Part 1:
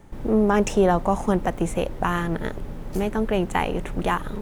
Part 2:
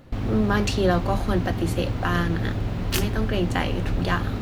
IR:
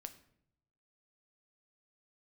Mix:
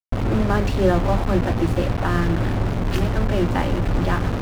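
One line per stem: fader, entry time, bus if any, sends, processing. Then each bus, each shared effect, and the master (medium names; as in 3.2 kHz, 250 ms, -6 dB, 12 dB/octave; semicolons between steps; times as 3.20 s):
-9.0 dB, 0.00 s, no send, bass shelf 96 Hz +11 dB
+2.0 dB, 0.00 s, send -9.5 dB, none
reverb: on, RT60 0.70 s, pre-delay 7 ms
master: bit crusher 4-bit; low-pass 1.1 kHz 6 dB/octave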